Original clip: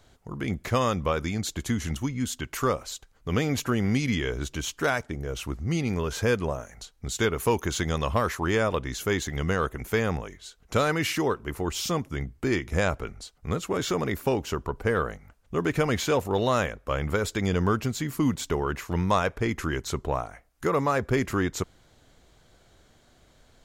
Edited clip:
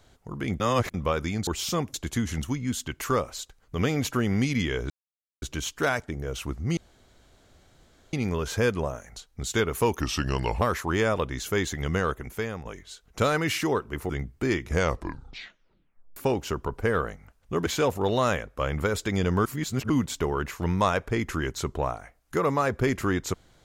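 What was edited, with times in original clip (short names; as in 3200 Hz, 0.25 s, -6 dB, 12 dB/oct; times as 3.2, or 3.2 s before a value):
0.6–0.94 reverse
4.43 insert silence 0.52 s
5.78 insert room tone 1.36 s
7.65–8.16 speed 83%
9.56–10.2 fade out, to -12 dB
11.64–12.11 move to 1.47
12.7 tape stop 1.48 s
15.68–15.96 cut
17.75–18.19 reverse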